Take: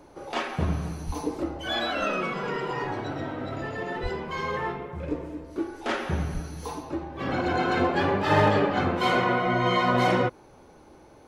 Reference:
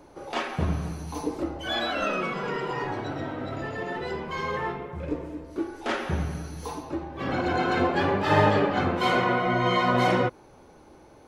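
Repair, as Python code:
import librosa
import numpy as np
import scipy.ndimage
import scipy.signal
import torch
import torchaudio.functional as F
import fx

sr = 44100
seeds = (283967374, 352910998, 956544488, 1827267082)

y = fx.fix_declip(x, sr, threshold_db=-12.5)
y = fx.fix_deplosive(y, sr, at_s=(1.06, 4.02, 6.33))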